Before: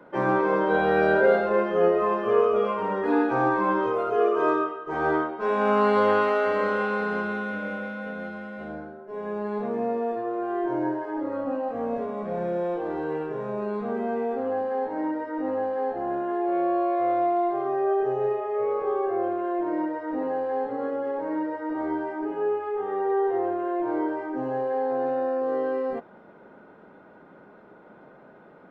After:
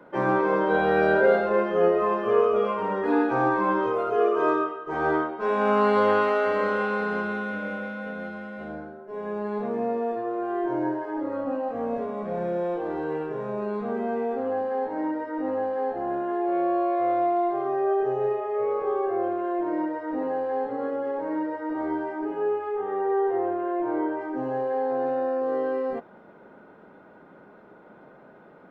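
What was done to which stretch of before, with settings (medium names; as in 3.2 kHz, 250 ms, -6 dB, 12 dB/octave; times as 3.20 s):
22.77–24.21 s: low-pass 3.5 kHz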